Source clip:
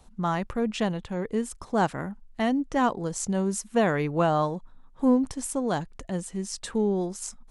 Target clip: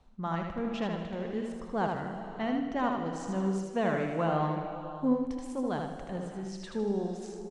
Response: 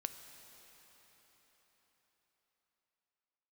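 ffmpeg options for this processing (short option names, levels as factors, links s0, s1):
-filter_complex "[0:a]lowpass=4000,aecho=1:1:78|156|234|312|390:0.596|0.226|0.086|0.0327|0.0124[s0];[1:a]atrim=start_sample=2205,afade=t=out:st=0.4:d=0.01,atrim=end_sample=18081,asetrate=22491,aresample=44100[s1];[s0][s1]afir=irnorm=-1:irlink=0,volume=0.376"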